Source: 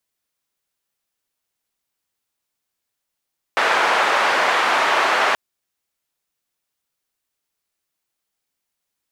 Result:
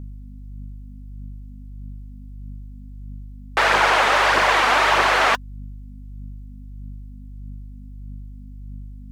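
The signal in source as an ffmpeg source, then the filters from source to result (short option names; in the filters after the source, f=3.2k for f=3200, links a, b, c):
-f lavfi -i "anoisesrc=c=white:d=1.78:r=44100:seed=1,highpass=f=690,lowpass=f=1400,volume=1.5dB"
-af "aeval=exprs='val(0)+0.0141*(sin(2*PI*50*n/s)+sin(2*PI*2*50*n/s)/2+sin(2*PI*3*50*n/s)/3+sin(2*PI*4*50*n/s)/4+sin(2*PI*5*50*n/s)/5)':c=same,areverse,acompressor=mode=upward:threshold=-36dB:ratio=2.5,areverse,aphaser=in_gain=1:out_gain=1:delay=4.6:decay=0.4:speed=1.6:type=triangular"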